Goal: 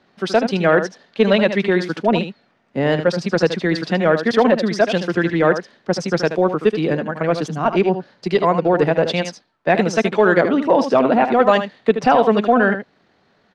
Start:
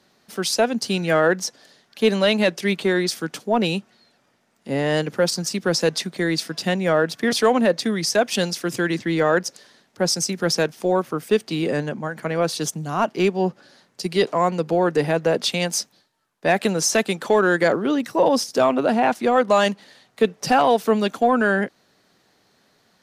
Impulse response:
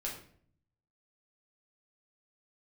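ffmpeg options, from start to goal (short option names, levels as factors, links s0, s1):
-filter_complex "[0:a]lowpass=3000,atempo=1.7,asplit=2[s0][s1];[s1]aecho=0:1:77:0.335[s2];[s0][s2]amix=inputs=2:normalize=0,volume=1.58"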